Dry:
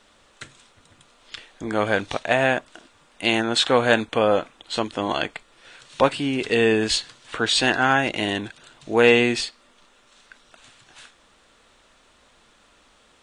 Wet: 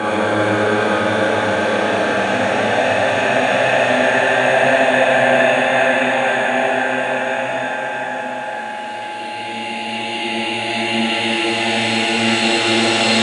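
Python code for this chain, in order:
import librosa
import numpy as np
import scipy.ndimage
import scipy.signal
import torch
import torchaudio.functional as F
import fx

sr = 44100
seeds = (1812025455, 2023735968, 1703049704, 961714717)

p1 = fx.high_shelf(x, sr, hz=8800.0, db=7.5)
p2 = fx.paulstretch(p1, sr, seeds[0], factor=8.3, window_s=1.0, from_s=1.84)
p3 = fx.low_shelf(p2, sr, hz=190.0, db=3.0)
p4 = p3 + fx.echo_wet_bandpass(p3, sr, ms=462, feedback_pct=64, hz=1200.0, wet_db=-6.5, dry=0)
p5 = fx.rev_schroeder(p4, sr, rt60_s=1.0, comb_ms=28, drr_db=-4.5)
p6 = p5 + 10.0 ** (-26.0 / 20.0) * np.sin(2.0 * np.pi * 840.0 * np.arange(len(p5)) / sr)
y = scipy.signal.sosfilt(scipy.signal.butter(2, 110.0, 'highpass', fs=sr, output='sos'), p6)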